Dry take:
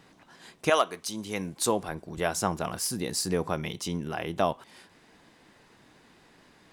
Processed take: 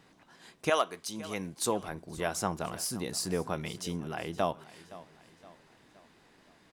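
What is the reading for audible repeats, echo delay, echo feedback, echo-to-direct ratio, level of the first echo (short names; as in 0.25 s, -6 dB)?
3, 0.518 s, 46%, -17.0 dB, -18.0 dB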